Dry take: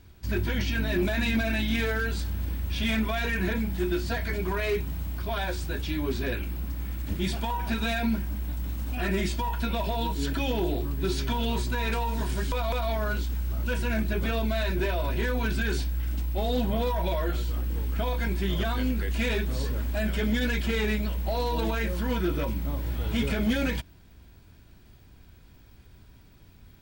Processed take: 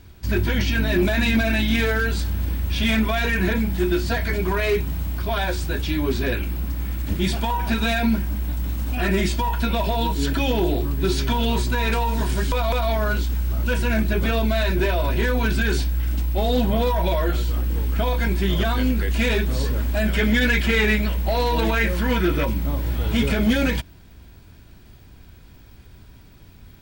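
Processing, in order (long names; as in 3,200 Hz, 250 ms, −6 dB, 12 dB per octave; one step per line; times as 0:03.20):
0:20.13–0:22.46: dynamic equaliser 2,000 Hz, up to +6 dB, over −47 dBFS, Q 1.4
level +6.5 dB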